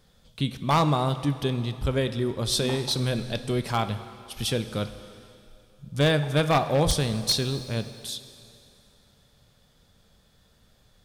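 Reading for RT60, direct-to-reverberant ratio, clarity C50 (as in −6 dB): 2.8 s, 11.5 dB, 12.0 dB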